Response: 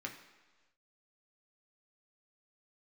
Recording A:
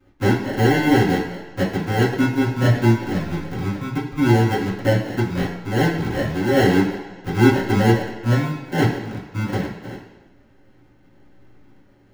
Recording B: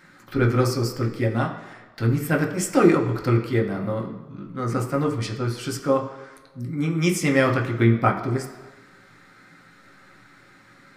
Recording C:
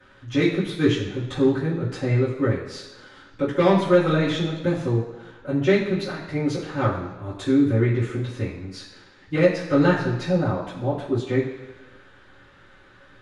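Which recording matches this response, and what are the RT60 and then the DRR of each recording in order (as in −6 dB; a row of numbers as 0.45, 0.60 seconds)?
B; 1.3, 1.3, 1.3 seconds; −9.0, 0.5, −16.5 decibels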